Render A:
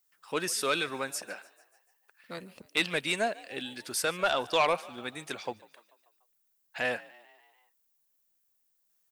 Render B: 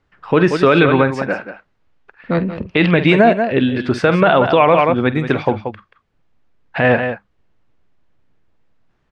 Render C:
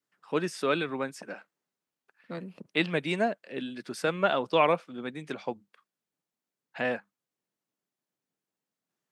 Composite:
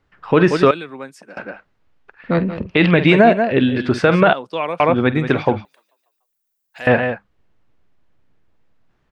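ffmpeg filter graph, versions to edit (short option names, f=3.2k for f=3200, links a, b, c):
-filter_complex "[2:a]asplit=2[a][b];[1:a]asplit=4[c][d][e][f];[c]atrim=end=0.712[g];[a]atrim=start=0.708:end=1.372[h];[d]atrim=start=1.368:end=4.332[i];[b]atrim=start=4.328:end=4.802[j];[e]atrim=start=4.798:end=5.652[k];[0:a]atrim=start=5.648:end=6.872[l];[f]atrim=start=6.868[m];[g][h]acrossfade=d=0.004:c1=hsin:c2=hsin[n];[n][i]acrossfade=d=0.004:c1=hsin:c2=hsin[o];[o][j]acrossfade=d=0.004:c1=hsin:c2=hsin[p];[p][k]acrossfade=d=0.004:c1=hsin:c2=hsin[q];[q][l]acrossfade=d=0.004:c1=hsin:c2=hsin[r];[r][m]acrossfade=d=0.004:c1=hsin:c2=hsin"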